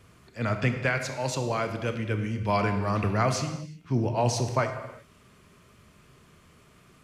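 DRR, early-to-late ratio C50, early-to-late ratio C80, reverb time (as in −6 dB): 6.5 dB, 8.0 dB, 9.5 dB, non-exponential decay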